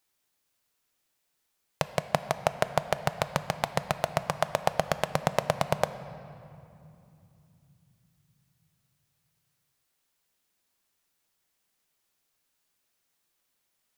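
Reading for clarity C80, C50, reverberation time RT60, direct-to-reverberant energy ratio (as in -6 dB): 13.5 dB, 12.5 dB, 2.9 s, 11.5 dB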